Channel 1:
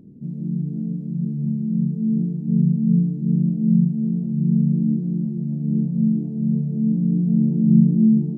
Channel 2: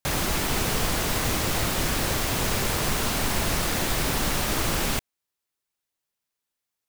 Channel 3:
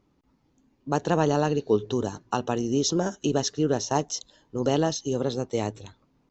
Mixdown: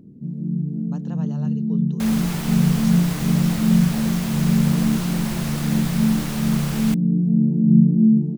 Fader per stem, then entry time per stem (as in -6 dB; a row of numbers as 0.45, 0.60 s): +0.5, -5.5, -18.0 dB; 0.00, 1.95, 0.00 s